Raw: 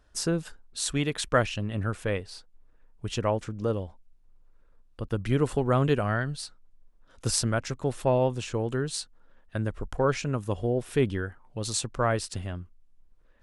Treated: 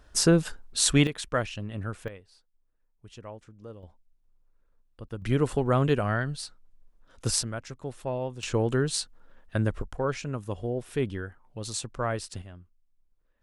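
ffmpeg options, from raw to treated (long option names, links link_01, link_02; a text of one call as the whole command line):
ffmpeg -i in.wav -af "asetnsamples=nb_out_samples=441:pad=0,asendcmd='1.07 volume volume -4.5dB;2.08 volume volume -16dB;3.83 volume volume -8dB;5.22 volume volume 0dB;7.43 volume volume -8dB;8.43 volume volume 3.5dB;9.82 volume volume -4dB;12.42 volume volume -11dB',volume=7dB" out.wav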